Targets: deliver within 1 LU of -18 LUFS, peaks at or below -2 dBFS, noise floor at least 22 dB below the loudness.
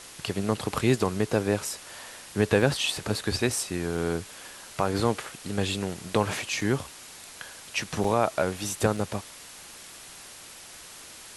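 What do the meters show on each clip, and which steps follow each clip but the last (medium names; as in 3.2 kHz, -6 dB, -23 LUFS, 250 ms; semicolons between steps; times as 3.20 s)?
dropouts 5; longest dropout 3.6 ms; noise floor -46 dBFS; noise floor target -50 dBFS; loudness -28.0 LUFS; peak level -7.5 dBFS; loudness target -18.0 LUFS
-> interpolate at 2.62/3.97/6.61/8.04/8.97 s, 3.6 ms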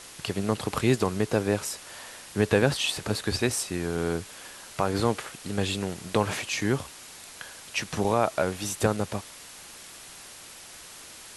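dropouts 0; noise floor -46 dBFS; noise floor target -50 dBFS
-> noise print and reduce 6 dB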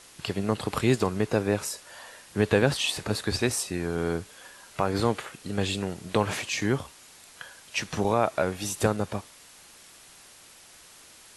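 noise floor -52 dBFS; loudness -28.0 LUFS; peak level -7.5 dBFS; loudness target -18.0 LUFS
-> trim +10 dB; peak limiter -2 dBFS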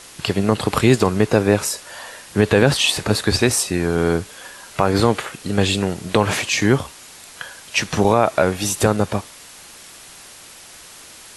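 loudness -18.5 LUFS; peak level -2.0 dBFS; noise floor -42 dBFS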